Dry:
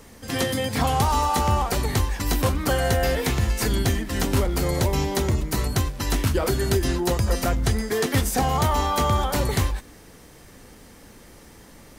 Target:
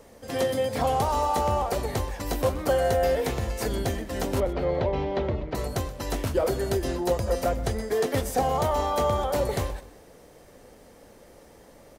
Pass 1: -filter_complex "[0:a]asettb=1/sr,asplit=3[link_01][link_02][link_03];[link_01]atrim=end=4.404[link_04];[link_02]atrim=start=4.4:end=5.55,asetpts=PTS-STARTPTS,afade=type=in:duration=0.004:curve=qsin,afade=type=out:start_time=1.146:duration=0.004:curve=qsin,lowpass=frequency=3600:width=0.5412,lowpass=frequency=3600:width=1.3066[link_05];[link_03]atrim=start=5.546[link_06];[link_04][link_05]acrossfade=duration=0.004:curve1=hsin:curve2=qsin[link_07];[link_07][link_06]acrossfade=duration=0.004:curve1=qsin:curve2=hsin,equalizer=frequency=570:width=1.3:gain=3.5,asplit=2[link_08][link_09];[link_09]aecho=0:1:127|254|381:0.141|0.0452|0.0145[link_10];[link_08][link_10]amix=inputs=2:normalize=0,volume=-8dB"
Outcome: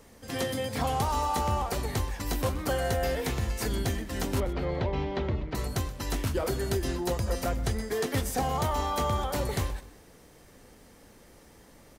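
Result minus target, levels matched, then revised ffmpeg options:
500 Hz band −3.5 dB
-filter_complex "[0:a]asettb=1/sr,asplit=3[link_01][link_02][link_03];[link_01]atrim=end=4.404[link_04];[link_02]atrim=start=4.4:end=5.55,asetpts=PTS-STARTPTS,afade=type=in:duration=0.004:curve=qsin,afade=type=out:start_time=1.146:duration=0.004:curve=qsin,lowpass=frequency=3600:width=0.5412,lowpass=frequency=3600:width=1.3066[link_05];[link_03]atrim=start=5.546[link_06];[link_04][link_05]acrossfade=duration=0.004:curve1=hsin:curve2=qsin[link_07];[link_07][link_06]acrossfade=duration=0.004:curve1=qsin:curve2=hsin,equalizer=frequency=570:width=1.3:gain=12,asplit=2[link_08][link_09];[link_09]aecho=0:1:127|254|381:0.141|0.0452|0.0145[link_10];[link_08][link_10]amix=inputs=2:normalize=0,volume=-8dB"

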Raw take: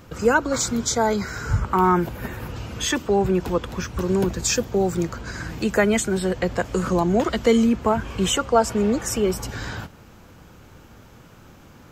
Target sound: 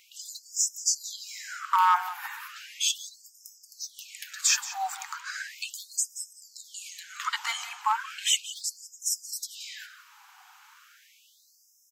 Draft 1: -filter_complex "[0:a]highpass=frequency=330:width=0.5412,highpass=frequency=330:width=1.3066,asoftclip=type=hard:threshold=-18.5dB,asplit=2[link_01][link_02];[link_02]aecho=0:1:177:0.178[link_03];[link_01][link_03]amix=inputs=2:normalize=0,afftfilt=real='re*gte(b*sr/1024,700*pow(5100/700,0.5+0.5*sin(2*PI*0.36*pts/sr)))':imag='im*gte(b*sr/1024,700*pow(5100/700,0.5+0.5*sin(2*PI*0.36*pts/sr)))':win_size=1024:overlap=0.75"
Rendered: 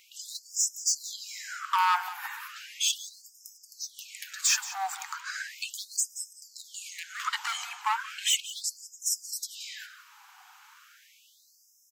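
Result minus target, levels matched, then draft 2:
hard clipping: distortion +11 dB
-filter_complex "[0:a]highpass=frequency=330:width=0.5412,highpass=frequency=330:width=1.3066,asoftclip=type=hard:threshold=-12dB,asplit=2[link_01][link_02];[link_02]aecho=0:1:177:0.178[link_03];[link_01][link_03]amix=inputs=2:normalize=0,afftfilt=real='re*gte(b*sr/1024,700*pow(5100/700,0.5+0.5*sin(2*PI*0.36*pts/sr)))':imag='im*gte(b*sr/1024,700*pow(5100/700,0.5+0.5*sin(2*PI*0.36*pts/sr)))':win_size=1024:overlap=0.75"

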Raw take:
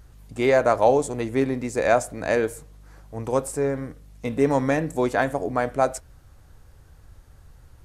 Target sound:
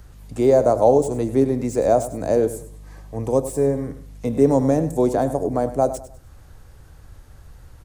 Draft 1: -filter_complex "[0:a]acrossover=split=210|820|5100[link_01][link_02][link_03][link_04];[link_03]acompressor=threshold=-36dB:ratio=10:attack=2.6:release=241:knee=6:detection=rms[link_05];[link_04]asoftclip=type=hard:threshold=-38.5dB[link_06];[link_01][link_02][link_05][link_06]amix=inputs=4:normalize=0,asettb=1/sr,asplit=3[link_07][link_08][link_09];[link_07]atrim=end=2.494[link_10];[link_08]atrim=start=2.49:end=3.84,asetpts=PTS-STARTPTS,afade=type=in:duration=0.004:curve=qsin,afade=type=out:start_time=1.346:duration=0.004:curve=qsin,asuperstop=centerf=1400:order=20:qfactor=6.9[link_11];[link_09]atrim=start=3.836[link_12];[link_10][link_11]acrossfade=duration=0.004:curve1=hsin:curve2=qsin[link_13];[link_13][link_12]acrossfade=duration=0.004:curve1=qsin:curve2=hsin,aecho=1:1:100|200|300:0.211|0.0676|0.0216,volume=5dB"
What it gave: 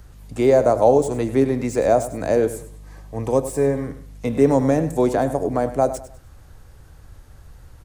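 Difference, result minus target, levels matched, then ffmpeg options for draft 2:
downward compressor: peak gain reduction −10 dB
-filter_complex "[0:a]acrossover=split=210|820|5100[link_01][link_02][link_03][link_04];[link_03]acompressor=threshold=-47dB:ratio=10:attack=2.6:release=241:knee=6:detection=rms[link_05];[link_04]asoftclip=type=hard:threshold=-38.5dB[link_06];[link_01][link_02][link_05][link_06]amix=inputs=4:normalize=0,asettb=1/sr,asplit=3[link_07][link_08][link_09];[link_07]atrim=end=2.494[link_10];[link_08]atrim=start=2.49:end=3.84,asetpts=PTS-STARTPTS,afade=type=in:duration=0.004:curve=qsin,afade=type=out:start_time=1.346:duration=0.004:curve=qsin,asuperstop=centerf=1400:order=20:qfactor=6.9[link_11];[link_09]atrim=start=3.836[link_12];[link_10][link_11]acrossfade=duration=0.004:curve1=hsin:curve2=qsin[link_13];[link_13][link_12]acrossfade=duration=0.004:curve1=qsin:curve2=hsin,aecho=1:1:100|200|300:0.211|0.0676|0.0216,volume=5dB"

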